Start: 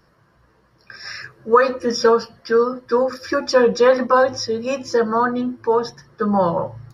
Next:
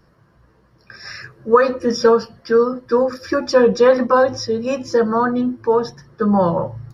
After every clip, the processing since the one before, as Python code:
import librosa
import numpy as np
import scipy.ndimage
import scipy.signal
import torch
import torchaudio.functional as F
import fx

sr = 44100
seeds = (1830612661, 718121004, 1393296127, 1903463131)

y = fx.low_shelf(x, sr, hz=480.0, db=6.5)
y = F.gain(torch.from_numpy(y), -1.5).numpy()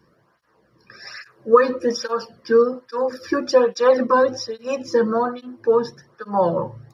y = fx.flanger_cancel(x, sr, hz=1.2, depth_ms=1.6)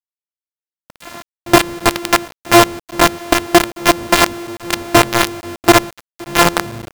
y = np.r_[np.sort(x[:len(x) // 128 * 128].reshape(-1, 128), axis=1).ravel(), x[len(x) // 128 * 128:]]
y = fx.rider(y, sr, range_db=5, speed_s=0.5)
y = fx.quant_companded(y, sr, bits=2)
y = F.gain(torch.from_numpy(y), -1.0).numpy()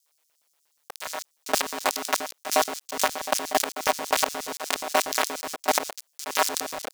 y = fx.filter_lfo_highpass(x, sr, shape='square', hz=8.4, low_hz=620.0, high_hz=5700.0, q=1.5)
y = y * np.sin(2.0 * np.pi * 76.0 * np.arange(len(y)) / sr)
y = fx.env_flatten(y, sr, amount_pct=50)
y = F.gain(torch.from_numpy(y), -12.0).numpy()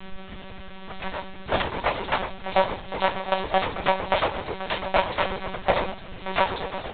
y = fx.dmg_noise_colour(x, sr, seeds[0], colour='pink', level_db=-42.0)
y = fx.room_shoebox(y, sr, seeds[1], volume_m3=160.0, walls='furnished', distance_m=1.2)
y = fx.lpc_monotone(y, sr, seeds[2], pitch_hz=190.0, order=16)